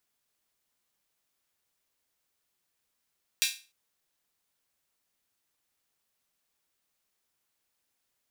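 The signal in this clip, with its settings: open hi-hat length 0.30 s, high-pass 2.8 kHz, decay 0.33 s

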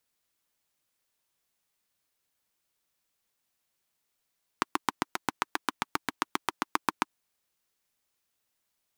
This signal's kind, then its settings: single-cylinder engine model, steady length 2.43 s, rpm 900, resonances 310/990 Hz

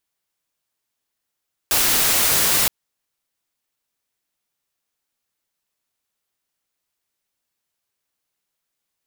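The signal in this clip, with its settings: noise white, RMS -17.5 dBFS 0.97 s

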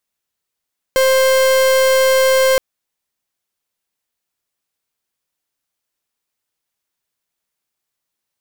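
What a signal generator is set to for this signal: pulse 526 Hz, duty 42% -12.5 dBFS 1.62 s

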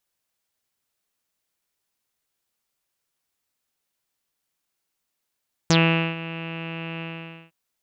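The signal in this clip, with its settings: synth note saw E3 24 dB/octave, low-pass 2.7 kHz, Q 7.8, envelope 1.5 oct, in 0.07 s, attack 1.4 ms, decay 0.45 s, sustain -17 dB, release 0.50 s, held 1.31 s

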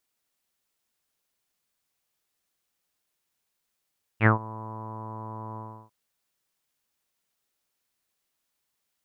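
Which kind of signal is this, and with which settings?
synth note saw A2 24 dB/octave, low-pass 1 kHz, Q 7.9, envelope 1.5 oct, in 0.14 s, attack 61 ms, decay 0.12 s, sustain -22.5 dB, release 0.33 s, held 1.37 s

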